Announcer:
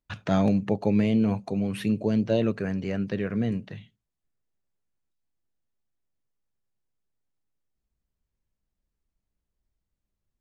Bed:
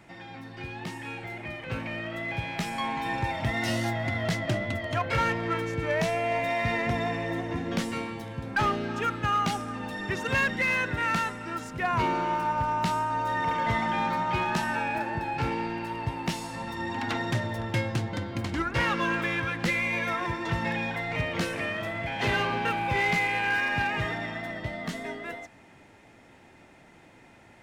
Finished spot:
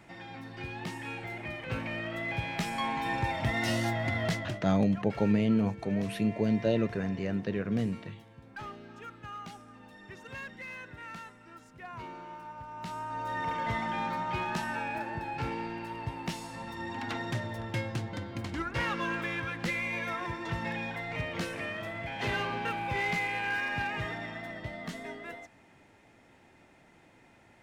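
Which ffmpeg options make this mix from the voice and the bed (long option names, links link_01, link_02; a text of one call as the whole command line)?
ffmpeg -i stem1.wav -i stem2.wav -filter_complex "[0:a]adelay=4350,volume=-3.5dB[link_01];[1:a]volume=10dB,afade=type=out:start_time=4.26:duration=0.37:silence=0.16788,afade=type=in:start_time=12.7:duration=0.69:silence=0.266073[link_02];[link_01][link_02]amix=inputs=2:normalize=0" out.wav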